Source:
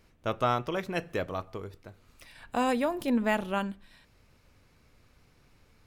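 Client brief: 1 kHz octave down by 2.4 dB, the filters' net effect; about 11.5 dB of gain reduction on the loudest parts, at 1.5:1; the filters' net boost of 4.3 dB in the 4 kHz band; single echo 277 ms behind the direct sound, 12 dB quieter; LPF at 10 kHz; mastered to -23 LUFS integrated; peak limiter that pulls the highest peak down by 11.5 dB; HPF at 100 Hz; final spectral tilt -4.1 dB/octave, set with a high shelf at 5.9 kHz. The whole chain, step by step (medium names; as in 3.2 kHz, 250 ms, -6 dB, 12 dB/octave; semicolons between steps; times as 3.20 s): high-pass 100 Hz; low-pass 10 kHz; peaking EQ 1 kHz -3.5 dB; peaking EQ 4 kHz +8 dB; treble shelf 5.9 kHz -6 dB; compression 1.5:1, threshold -56 dBFS; peak limiter -36.5 dBFS; delay 277 ms -12 dB; trim +25 dB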